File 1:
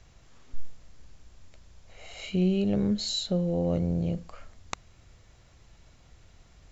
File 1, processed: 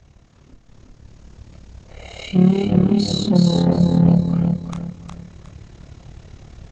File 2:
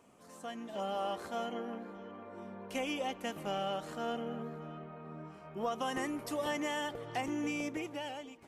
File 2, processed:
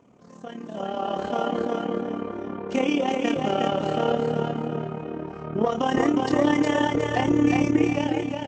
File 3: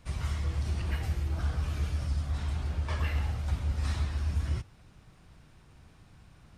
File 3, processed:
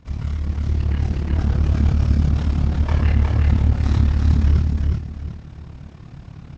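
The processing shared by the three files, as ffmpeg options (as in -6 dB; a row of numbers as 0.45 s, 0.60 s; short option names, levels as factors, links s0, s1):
-filter_complex "[0:a]lowshelf=f=240:g=2.5,asplit=2[s0][s1];[s1]aeval=exprs='0.0473*(abs(mod(val(0)/0.0473+3,4)-2)-1)':c=same,volume=0.376[s2];[s0][s2]amix=inputs=2:normalize=0,bandreject=f=201.9:t=h:w=4,bandreject=f=403.8:t=h:w=4,bandreject=f=605.7:t=h:w=4,aresample=16000,aresample=44100,asoftclip=type=tanh:threshold=0.0841,highpass=f=100:p=1,lowshelf=f=490:g=11,asplit=2[s3][s4];[s4]adelay=28,volume=0.447[s5];[s3][s5]amix=inputs=2:normalize=0,aecho=1:1:362|724|1086|1448:0.668|0.201|0.0602|0.018,tremolo=f=36:d=0.71,dynaudnorm=f=460:g=5:m=2.37" -ar 22050 -c:a nellymoser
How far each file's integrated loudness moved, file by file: +11.5 LU, +14.0 LU, +13.0 LU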